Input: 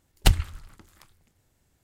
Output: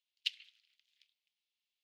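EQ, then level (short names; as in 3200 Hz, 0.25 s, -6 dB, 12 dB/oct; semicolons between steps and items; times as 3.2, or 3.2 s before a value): steep high-pass 2800 Hz 36 dB/oct; air absorption 310 m; high shelf 9900 Hz -7 dB; +1.0 dB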